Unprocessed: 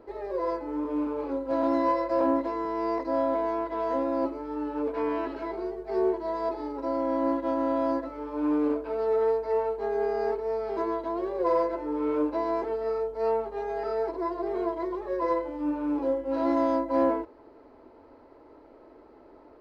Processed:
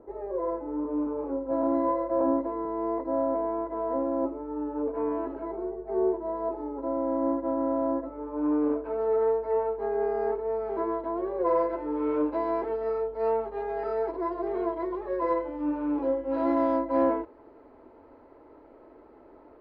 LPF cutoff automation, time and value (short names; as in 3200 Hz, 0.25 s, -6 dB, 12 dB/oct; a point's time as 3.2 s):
8.12 s 1000 Hz
8.9 s 1700 Hz
11.34 s 1700 Hz
11.77 s 2800 Hz